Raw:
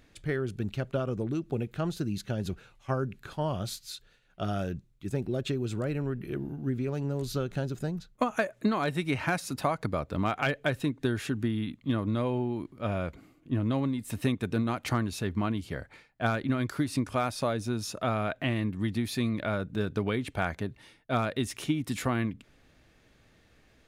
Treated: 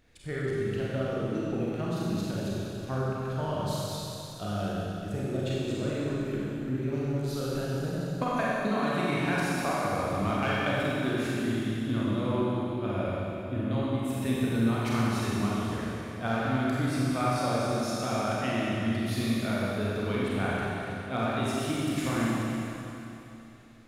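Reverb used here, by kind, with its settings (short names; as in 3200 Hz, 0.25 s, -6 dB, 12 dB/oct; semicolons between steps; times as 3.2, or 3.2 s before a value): Schroeder reverb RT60 3.1 s, combs from 31 ms, DRR -7 dB; gain -6 dB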